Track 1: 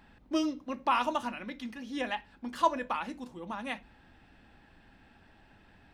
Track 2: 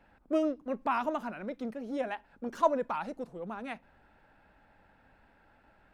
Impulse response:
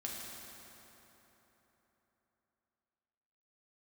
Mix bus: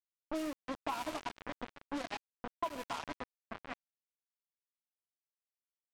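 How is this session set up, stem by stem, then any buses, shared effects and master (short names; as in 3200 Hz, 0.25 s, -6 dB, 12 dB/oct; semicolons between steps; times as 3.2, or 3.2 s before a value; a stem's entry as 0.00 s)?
-5.0 dB, 0.00 s, send -3 dB, fixed phaser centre 320 Hz, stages 8; comb 7.2 ms, depth 61%; noise-modulated delay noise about 1600 Hz, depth 0.058 ms
-2.5 dB, 1.1 ms, send -23.5 dB, high shelf 2700 Hz +7 dB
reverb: on, RT60 3.8 s, pre-delay 4 ms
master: sample gate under -30 dBFS; low-pass opened by the level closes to 1300 Hz, open at -25 dBFS; compressor 6:1, threshold -35 dBFS, peak gain reduction 17.5 dB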